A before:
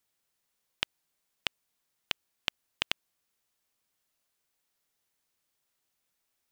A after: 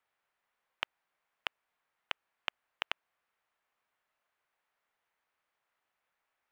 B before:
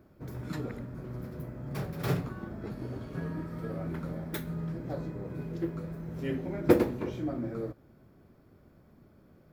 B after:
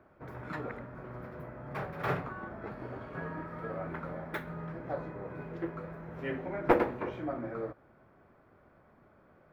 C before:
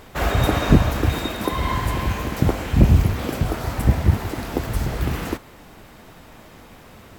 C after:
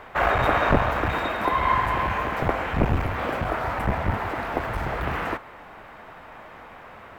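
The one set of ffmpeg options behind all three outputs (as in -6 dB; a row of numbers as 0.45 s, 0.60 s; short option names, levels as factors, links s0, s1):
-filter_complex "[0:a]aeval=exprs='clip(val(0),-1,0.0944)':c=same,acrossover=split=570 2400:gain=0.2 1 0.0794[s0][s1][s2];[s0][s1][s2]amix=inputs=3:normalize=0,volume=2.24"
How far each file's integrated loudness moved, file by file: -4.5 LU, -2.5 LU, -3.0 LU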